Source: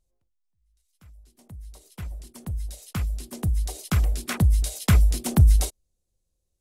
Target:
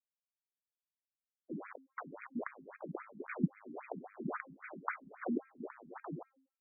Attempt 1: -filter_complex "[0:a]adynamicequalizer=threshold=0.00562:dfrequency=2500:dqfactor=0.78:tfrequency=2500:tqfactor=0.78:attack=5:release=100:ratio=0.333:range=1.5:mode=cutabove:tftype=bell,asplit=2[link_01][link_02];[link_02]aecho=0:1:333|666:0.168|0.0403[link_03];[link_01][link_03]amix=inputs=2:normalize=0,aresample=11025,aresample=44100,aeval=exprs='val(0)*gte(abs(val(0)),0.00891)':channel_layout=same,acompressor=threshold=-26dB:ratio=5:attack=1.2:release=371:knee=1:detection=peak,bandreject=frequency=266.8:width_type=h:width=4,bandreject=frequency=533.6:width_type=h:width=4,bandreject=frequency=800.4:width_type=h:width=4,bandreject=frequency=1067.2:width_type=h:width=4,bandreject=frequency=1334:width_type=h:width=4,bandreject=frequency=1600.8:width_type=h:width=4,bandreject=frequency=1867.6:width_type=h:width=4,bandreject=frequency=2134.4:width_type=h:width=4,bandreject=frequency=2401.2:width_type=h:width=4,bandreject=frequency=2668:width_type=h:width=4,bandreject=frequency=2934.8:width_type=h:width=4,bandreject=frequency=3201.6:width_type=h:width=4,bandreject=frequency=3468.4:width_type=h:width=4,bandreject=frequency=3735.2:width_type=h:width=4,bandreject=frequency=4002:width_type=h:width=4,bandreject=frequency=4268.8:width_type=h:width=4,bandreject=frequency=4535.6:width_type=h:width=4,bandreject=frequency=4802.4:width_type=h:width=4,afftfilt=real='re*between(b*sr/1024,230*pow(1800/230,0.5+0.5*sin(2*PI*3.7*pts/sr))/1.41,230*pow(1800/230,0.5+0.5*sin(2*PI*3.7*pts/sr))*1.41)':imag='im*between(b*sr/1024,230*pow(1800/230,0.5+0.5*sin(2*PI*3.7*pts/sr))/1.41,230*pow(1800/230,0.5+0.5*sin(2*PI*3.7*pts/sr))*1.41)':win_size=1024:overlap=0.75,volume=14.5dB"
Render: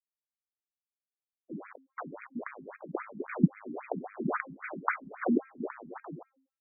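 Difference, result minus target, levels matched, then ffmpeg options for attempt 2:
downward compressor: peak gain reduction −9 dB
-filter_complex "[0:a]adynamicequalizer=threshold=0.00562:dfrequency=2500:dqfactor=0.78:tfrequency=2500:tqfactor=0.78:attack=5:release=100:ratio=0.333:range=1.5:mode=cutabove:tftype=bell,asplit=2[link_01][link_02];[link_02]aecho=0:1:333|666:0.168|0.0403[link_03];[link_01][link_03]amix=inputs=2:normalize=0,aresample=11025,aresample=44100,aeval=exprs='val(0)*gte(abs(val(0)),0.00891)':channel_layout=same,acompressor=threshold=-37dB:ratio=5:attack=1.2:release=371:knee=1:detection=peak,bandreject=frequency=266.8:width_type=h:width=4,bandreject=frequency=533.6:width_type=h:width=4,bandreject=frequency=800.4:width_type=h:width=4,bandreject=frequency=1067.2:width_type=h:width=4,bandreject=frequency=1334:width_type=h:width=4,bandreject=frequency=1600.8:width_type=h:width=4,bandreject=frequency=1867.6:width_type=h:width=4,bandreject=frequency=2134.4:width_type=h:width=4,bandreject=frequency=2401.2:width_type=h:width=4,bandreject=frequency=2668:width_type=h:width=4,bandreject=frequency=2934.8:width_type=h:width=4,bandreject=frequency=3201.6:width_type=h:width=4,bandreject=frequency=3468.4:width_type=h:width=4,bandreject=frequency=3735.2:width_type=h:width=4,bandreject=frequency=4002:width_type=h:width=4,bandreject=frequency=4268.8:width_type=h:width=4,bandreject=frequency=4535.6:width_type=h:width=4,bandreject=frequency=4802.4:width_type=h:width=4,afftfilt=real='re*between(b*sr/1024,230*pow(1800/230,0.5+0.5*sin(2*PI*3.7*pts/sr))/1.41,230*pow(1800/230,0.5+0.5*sin(2*PI*3.7*pts/sr))*1.41)':imag='im*between(b*sr/1024,230*pow(1800/230,0.5+0.5*sin(2*PI*3.7*pts/sr))/1.41,230*pow(1800/230,0.5+0.5*sin(2*PI*3.7*pts/sr))*1.41)':win_size=1024:overlap=0.75,volume=14.5dB"

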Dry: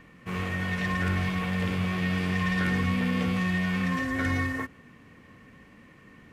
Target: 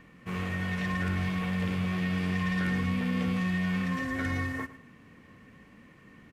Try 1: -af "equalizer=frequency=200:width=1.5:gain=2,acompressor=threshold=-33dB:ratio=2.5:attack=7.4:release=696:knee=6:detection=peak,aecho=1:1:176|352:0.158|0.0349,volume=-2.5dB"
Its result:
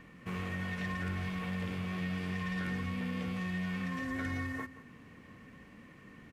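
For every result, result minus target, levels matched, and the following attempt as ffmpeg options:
echo 67 ms late; downward compressor: peak gain reduction +6.5 dB
-af "equalizer=frequency=200:width=1.5:gain=2,acompressor=threshold=-33dB:ratio=2.5:attack=7.4:release=696:knee=6:detection=peak,aecho=1:1:109|218:0.158|0.0349,volume=-2.5dB"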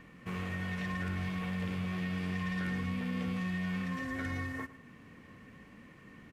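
downward compressor: peak gain reduction +6.5 dB
-af "equalizer=frequency=200:width=1.5:gain=2,acompressor=threshold=-22dB:ratio=2.5:attack=7.4:release=696:knee=6:detection=peak,aecho=1:1:109|218:0.158|0.0349,volume=-2.5dB"

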